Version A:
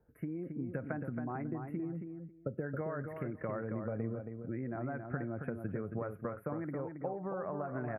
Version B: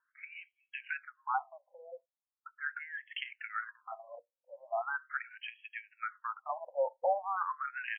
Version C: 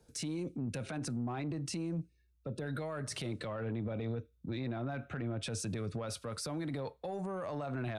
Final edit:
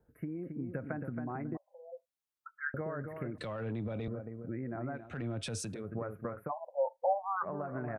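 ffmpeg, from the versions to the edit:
-filter_complex "[1:a]asplit=2[s0][s1];[2:a]asplit=2[s2][s3];[0:a]asplit=5[s4][s5][s6][s7][s8];[s4]atrim=end=1.572[s9];[s0]atrim=start=1.568:end=2.742[s10];[s5]atrim=start=2.738:end=3.382[s11];[s2]atrim=start=3.378:end=4.082[s12];[s6]atrim=start=4.078:end=5.17[s13];[s3]atrim=start=4.93:end=5.87[s14];[s7]atrim=start=5.63:end=6.52[s15];[s1]atrim=start=6.46:end=7.47[s16];[s8]atrim=start=7.41[s17];[s9][s10]acrossfade=d=0.004:c1=hsin:c2=hsin[s18];[s18][s11]acrossfade=d=0.004:c1=hsin:c2=hsin[s19];[s19][s12]acrossfade=d=0.004:c1=hsin:c2=hsin[s20];[s20][s13]acrossfade=d=0.004:c1=hsin:c2=hsin[s21];[s21][s14]acrossfade=d=0.24:c1=tri:c2=tri[s22];[s22][s15]acrossfade=d=0.24:c1=tri:c2=tri[s23];[s23][s16]acrossfade=d=0.06:c1=tri:c2=tri[s24];[s24][s17]acrossfade=d=0.06:c1=tri:c2=tri"

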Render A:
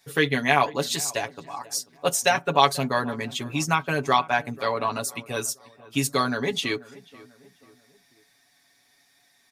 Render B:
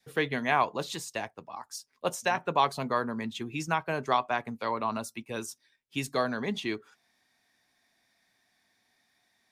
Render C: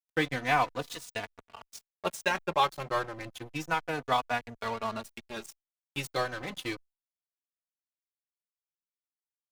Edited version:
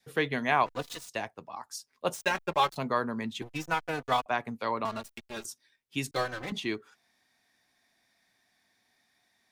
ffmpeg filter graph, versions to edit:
-filter_complex "[2:a]asplit=5[s0][s1][s2][s3][s4];[1:a]asplit=6[s5][s6][s7][s8][s9][s10];[s5]atrim=end=0.662[s11];[s0]atrim=start=0.658:end=1.092[s12];[s6]atrim=start=1.088:end=2.142[s13];[s1]atrim=start=2.138:end=2.762[s14];[s7]atrim=start=2.758:end=3.422[s15];[s2]atrim=start=3.418:end=4.262[s16];[s8]atrim=start=4.258:end=4.852[s17];[s3]atrim=start=4.848:end=5.452[s18];[s9]atrim=start=5.448:end=6.112[s19];[s4]atrim=start=6.108:end=6.522[s20];[s10]atrim=start=6.518[s21];[s11][s12]acrossfade=d=0.004:c1=hsin:c2=hsin[s22];[s22][s13]acrossfade=d=0.004:c1=hsin:c2=hsin[s23];[s23][s14]acrossfade=d=0.004:c1=hsin:c2=hsin[s24];[s24][s15]acrossfade=d=0.004:c1=hsin:c2=hsin[s25];[s25][s16]acrossfade=d=0.004:c1=hsin:c2=hsin[s26];[s26][s17]acrossfade=d=0.004:c1=hsin:c2=hsin[s27];[s27][s18]acrossfade=d=0.004:c1=hsin:c2=hsin[s28];[s28][s19]acrossfade=d=0.004:c1=hsin:c2=hsin[s29];[s29][s20]acrossfade=d=0.004:c1=hsin:c2=hsin[s30];[s30][s21]acrossfade=d=0.004:c1=hsin:c2=hsin"

